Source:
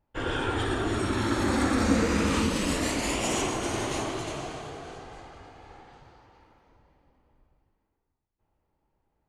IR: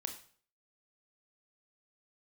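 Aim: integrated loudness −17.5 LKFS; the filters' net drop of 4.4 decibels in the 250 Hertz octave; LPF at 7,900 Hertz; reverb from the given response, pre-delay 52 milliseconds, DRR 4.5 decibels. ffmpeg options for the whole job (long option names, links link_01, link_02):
-filter_complex "[0:a]lowpass=7900,equalizer=frequency=250:width_type=o:gain=-5.5,asplit=2[link_01][link_02];[1:a]atrim=start_sample=2205,adelay=52[link_03];[link_02][link_03]afir=irnorm=-1:irlink=0,volume=-3.5dB[link_04];[link_01][link_04]amix=inputs=2:normalize=0,volume=10.5dB"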